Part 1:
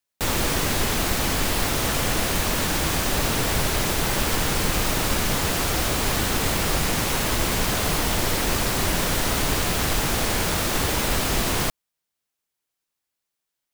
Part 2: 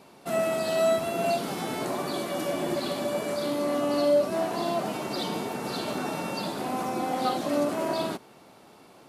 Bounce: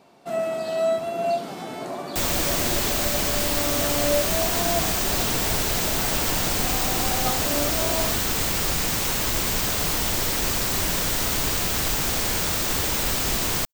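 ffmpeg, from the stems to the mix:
ffmpeg -i stem1.wav -i stem2.wav -filter_complex "[0:a]highshelf=frequency=5000:gain=10,adelay=1950,volume=-4dB[link_01];[1:a]equalizer=frequency=690:width=6.7:gain=6.5,volume=-3dB[link_02];[link_01][link_02]amix=inputs=2:normalize=0,equalizer=frequency=11000:width_type=o:width=0.27:gain=-12" out.wav

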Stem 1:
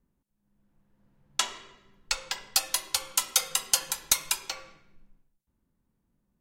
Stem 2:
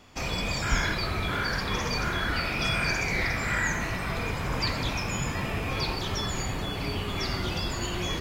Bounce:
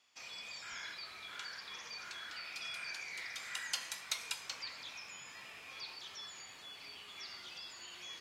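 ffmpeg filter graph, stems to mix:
ffmpeg -i stem1.wav -i stem2.wav -filter_complex "[0:a]acrossover=split=4100[link_01][link_02];[link_02]acompressor=threshold=-34dB:ratio=4:attack=1:release=60[link_03];[link_01][link_03]amix=inputs=2:normalize=0,volume=-4.5dB,afade=type=in:start_time=3.33:duration=0.39:silence=0.223872[link_04];[1:a]acrossover=split=5000[link_05][link_06];[link_06]acompressor=threshold=-43dB:ratio=4:attack=1:release=60[link_07];[link_05][link_07]amix=inputs=2:normalize=0,volume=-11.5dB[link_08];[link_04][link_08]amix=inputs=2:normalize=0,bandpass=frequency=5300:width_type=q:width=0.57:csg=0" out.wav

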